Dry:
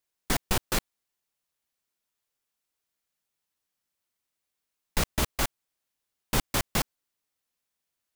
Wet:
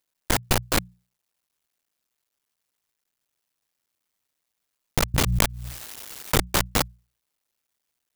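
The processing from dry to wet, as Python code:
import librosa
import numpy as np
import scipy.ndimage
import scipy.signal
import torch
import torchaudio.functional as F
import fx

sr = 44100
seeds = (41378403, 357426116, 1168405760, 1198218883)

y = fx.cycle_switch(x, sr, every=2, mode='muted')
y = fx.hum_notches(y, sr, base_hz=60, count=3)
y = fx.pre_swell(y, sr, db_per_s=23.0, at=(5.14, 6.4))
y = y * librosa.db_to_amplitude(7.0)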